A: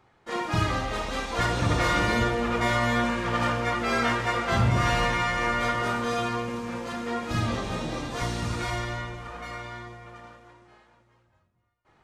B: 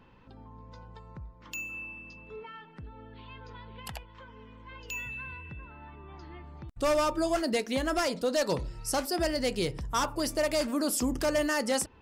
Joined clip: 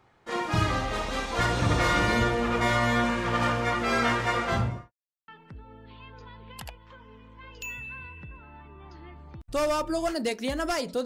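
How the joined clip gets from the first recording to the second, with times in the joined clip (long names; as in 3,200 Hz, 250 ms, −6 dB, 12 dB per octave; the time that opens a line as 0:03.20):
A
0:04.40–0:04.92: fade out and dull
0:04.92–0:05.28: silence
0:05.28: continue with B from 0:02.56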